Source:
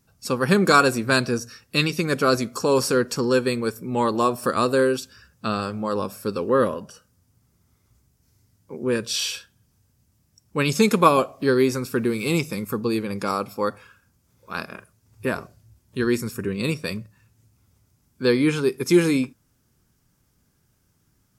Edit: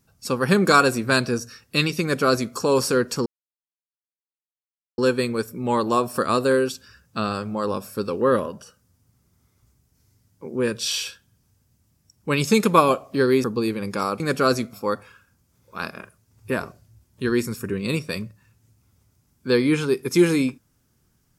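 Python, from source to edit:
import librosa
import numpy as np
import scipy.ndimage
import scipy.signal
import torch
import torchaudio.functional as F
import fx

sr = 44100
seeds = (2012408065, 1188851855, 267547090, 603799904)

y = fx.edit(x, sr, fx.duplicate(start_s=2.02, length_s=0.53, to_s=13.48),
    fx.insert_silence(at_s=3.26, length_s=1.72),
    fx.cut(start_s=11.72, length_s=1.0), tone=tone)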